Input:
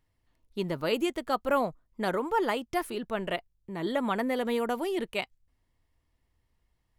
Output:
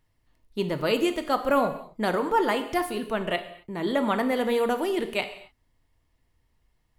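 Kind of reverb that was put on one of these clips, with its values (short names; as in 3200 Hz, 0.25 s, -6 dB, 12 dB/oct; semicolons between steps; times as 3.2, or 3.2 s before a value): non-linear reverb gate 0.29 s falling, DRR 7.5 dB; gain +3.5 dB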